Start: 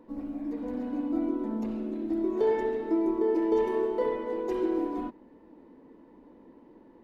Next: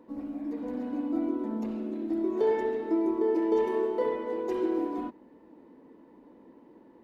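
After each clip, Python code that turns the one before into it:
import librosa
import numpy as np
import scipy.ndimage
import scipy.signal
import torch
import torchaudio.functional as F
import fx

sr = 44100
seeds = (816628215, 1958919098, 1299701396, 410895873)

y = fx.highpass(x, sr, hz=100.0, slope=6)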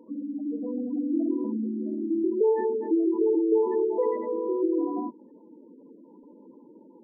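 y = fx.spec_gate(x, sr, threshold_db=-15, keep='strong')
y = y * 10.0 ** (3.5 / 20.0)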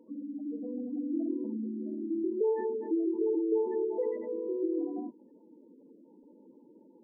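y = fx.notch(x, sr, hz=1000.0, q=6.4)
y = y * 10.0 ** (-6.0 / 20.0)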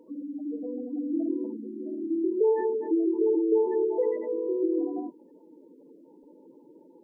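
y = fx.peak_eq(x, sr, hz=220.0, db=-12.5, octaves=0.37)
y = y * 10.0 ** (6.0 / 20.0)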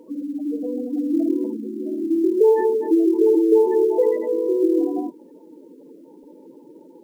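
y = fx.quant_companded(x, sr, bits=8)
y = y * 10.0 ** (8.0 / 20.0)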